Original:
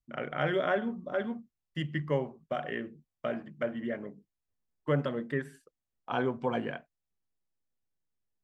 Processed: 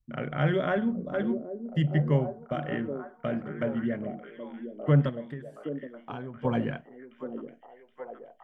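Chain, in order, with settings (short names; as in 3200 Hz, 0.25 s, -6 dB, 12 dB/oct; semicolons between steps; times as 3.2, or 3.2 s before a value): tone controls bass +12 dB, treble -2 dB; 5.09–6.45 compressor 5:1, threshold -37 dBFS, peak gain reduction 15 dB; on a send: delay with a stepping band-pass 0.773 s, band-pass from 360 Hz, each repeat 0.7 oct, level -5 dB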